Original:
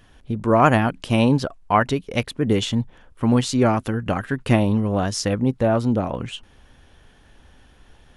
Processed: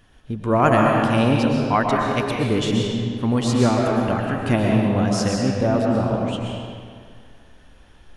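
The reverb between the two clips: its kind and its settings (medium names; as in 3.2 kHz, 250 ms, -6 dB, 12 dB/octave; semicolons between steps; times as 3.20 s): algorithmic reverb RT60 2.1 s, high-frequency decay 0.75×, pre-delay 85 ms, DRR -1 dB; trim -2.5 dB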